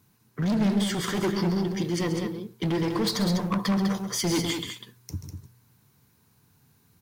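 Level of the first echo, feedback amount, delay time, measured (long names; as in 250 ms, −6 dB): −11.0 dB, repeats not evenly spaced, 134 ms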